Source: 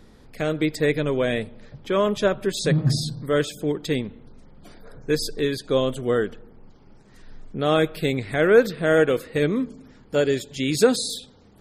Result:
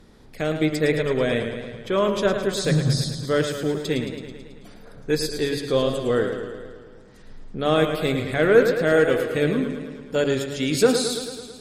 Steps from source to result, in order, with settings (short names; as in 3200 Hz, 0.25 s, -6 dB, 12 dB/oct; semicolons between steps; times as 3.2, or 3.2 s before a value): de-hum 71.33 Hz, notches 39; added harmonics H 8 -38 dB, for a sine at -3.5 dBFS; warbling echo 0.109 s, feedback 65%, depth 69 cents, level -8 dB